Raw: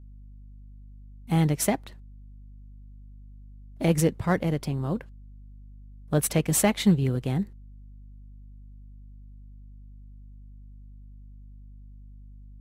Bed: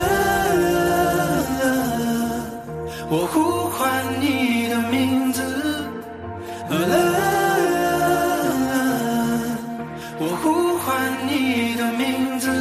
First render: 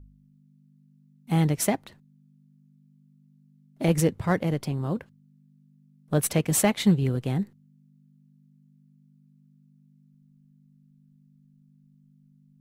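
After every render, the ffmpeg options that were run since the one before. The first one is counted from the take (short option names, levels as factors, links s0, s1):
-af "bandreject=f=50:t=h:w=4,bandreject=f=100:t=h:w=4"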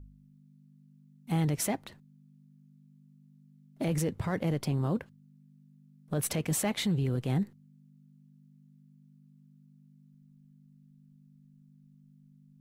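-af "alimiter=limit=0.0794:level=0:latency=1:release=20"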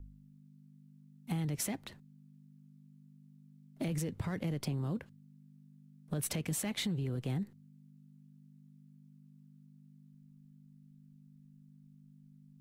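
-filter_complex "[0:a]acrossover=split=330|1700|4100[s0][s1][s2][s3];[s1]alimiter=level_in=2.82:limit=0.0631:level=0:latency=1:release=259,volume=0.355[s4];[s0][s4][s2][s3]amix=inputs=4:normalize=0,acompressor=threshold=0.0251:ratio=6"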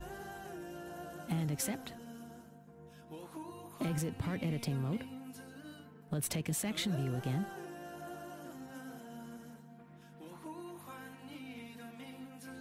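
-filter_complex "[1:a]volume=0.0398[s0];[0:a][s0]amix=inputs=2:normalize=0"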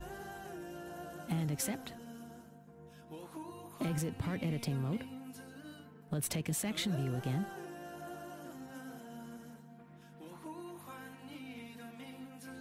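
-af anull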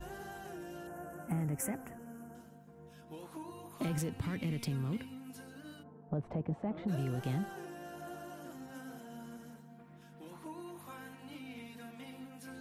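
-filter_complex "[0:a]asettb=1/sr,asplit=3[s0][s1][s2];[s0]atrim=end=0.874[s3];[s1]atrim=start=0.87:end=2.35,asetpts=PTS-STARTPTS,afade=t=in:d=0.004:c=qsin,afade=t=out:st=1.476:d=0.004:c=qsin,asuperstop=centerf=4000:order=4:qfactor=0.78[s4];[s2]atrim=start=2.346[s5];[s3][s4]acrossfade=d=0.004:c1=hsin:c2=qsin[s6];[s6][s5]acrossfade=d=0.004:c1=qsin:c2=hsin,asettb=1/sr,asplit=3[s7][s8][s9];[s7]atrim=end=4.214[s10];[s8]atrim=start=4.21:end=5.3,asetpts=PTS-STARTPTS,afade=t=in:d=0.004:c=qsin,afade=t=out:st=1.086:d=0.004:c=qsin,equalizer=f=640:w=1.5:g=-6.5[s11];[s9]atrim=start=5.296[s12];[s10][s11]acrossfade=d=0.004:c1=hsin:c2=qsin[s13];[s13][s12]acrossfade=d=0.004:c1=qsin:c2=hsin,asplit=3[s14][s15][s16];[s14]afade=t=out:st=5.82:d=0.02[s17];[s15]lowpass=f=830:t=q:w=1.5,afade=t=in:st=5.82:d=0.02,afade=t=out:st=6.87:d=0.02[s18];[s16]afade=t=in:st=6.87:d=0.02[s19];[s17][s18][s19]amix=inputs=3:normalize=0"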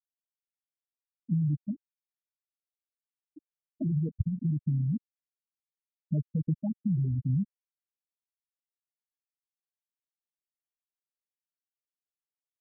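-af "afftfilt=real='re*gte(hypot(re,im),0.0891)':imag='im*gte(hypot(re,im),0.0891)':win_size=1024:overlap=0.75,lowshelf=f=240:g=12"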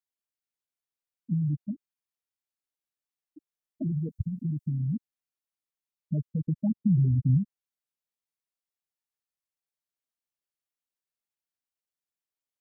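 -filter_complex "[0:a]asettb=1/sr,asplit=3[s0][s1][s2];[s0]atrim=end=3.924[s3];[s1]atrim=start=3.92:end=4.81,asetpts=PTS-STARTPTS,afade=t=in:d=0.004:c=qsin,afade=t=out:st=0.886:d=0.004:c=qsin,bass=f=250:g=-2,treble=f=4000:g=10[s4];[s2]atrim=start=4.806[s5];[s3][s4]acrossfade=d=0.004:c1=hsin:c2=qsin[s6];[s6][s5]acrossfade=d=0.004:c1=qsin:c2=hsin,asplit=3[s7][s8][s9];[s7]afade=t=out:st=6.62:d=0.02[s10];[s8]tiltshelf=f=730:g=6,afade=t=in:st=6.62:d=0.02,afade=t=out:st=7.37:d=0.02[s11];[s9]afade=t=in:st=7.37:d=0.02[s12];[s10][s11][s12]amix=inputs=3:normalize=0"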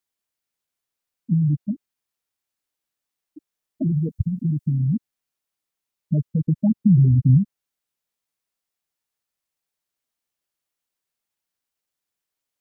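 -af "volume=2.51"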